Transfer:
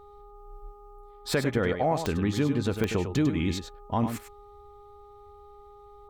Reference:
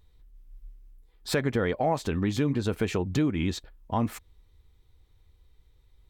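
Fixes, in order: de-click; de-hum 410.3 Hz, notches 3; inverse comb 100 ms -8.5 dB

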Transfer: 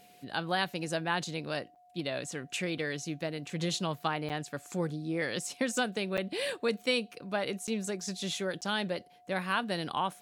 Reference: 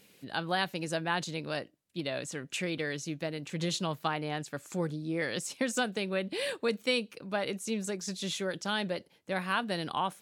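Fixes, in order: band-stop 720 Hz, Q 30; interpolate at 1.75/4.29/6.17/7.67/8.61 s, 7.8 ms

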